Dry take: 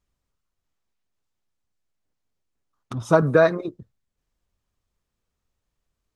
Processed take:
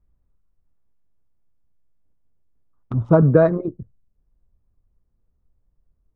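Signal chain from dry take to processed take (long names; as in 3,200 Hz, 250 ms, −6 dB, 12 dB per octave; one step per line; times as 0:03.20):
adaptive Wiener filter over 9 samples
low-pass filter 2,300 Hz 6 dB per octave, from 0:02.95 1,100 Hz
spectral tilt −3 dB per octave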